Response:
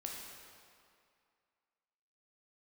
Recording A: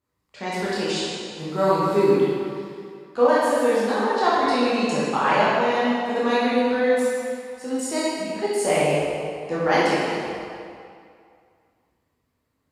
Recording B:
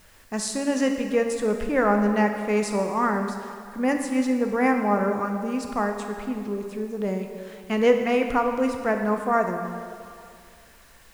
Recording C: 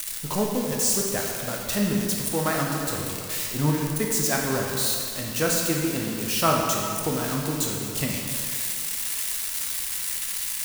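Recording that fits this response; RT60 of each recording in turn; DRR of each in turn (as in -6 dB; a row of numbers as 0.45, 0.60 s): C; 2.3, 2.3, 2.3 s; -9.0, 4.0, -1.5 dB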